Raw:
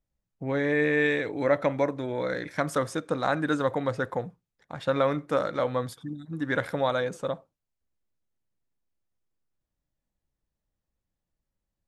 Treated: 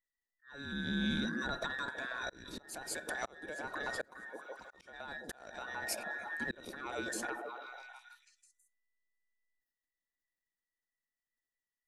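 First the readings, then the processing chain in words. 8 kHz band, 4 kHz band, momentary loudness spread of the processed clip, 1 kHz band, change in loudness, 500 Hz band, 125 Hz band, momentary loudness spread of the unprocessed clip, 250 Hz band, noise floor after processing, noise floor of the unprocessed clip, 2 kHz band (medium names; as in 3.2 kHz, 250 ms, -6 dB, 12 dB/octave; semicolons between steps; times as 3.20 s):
+2.5 dB, -2.5 dB, 14 LU, -12.0 dB, -12.0 dB, -19.0 dB, -14.0 dB, 11 LU, -11.0 dB, under -85 dBFS, under -85 dBFS, -7.0 dB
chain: every band turned upside down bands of 2 kHz; transient shaper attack -2 dB, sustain +7 dB; on a send: repeats whose band climbs or falls 163 ms, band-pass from 240 Hz, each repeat 0.7 oct, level -5 dB; on the sum: compression 6:1, threshold -29 dBFS, peak gain reduction 10.5 dB; peaking EQ 1.4 kHz -13 dB 1.3 oct; spectral noise reduction 12 dB; slow attack 593 ms; peaking EQ 130 Hz -4.5 dB 0.58 oct; trim +4 dB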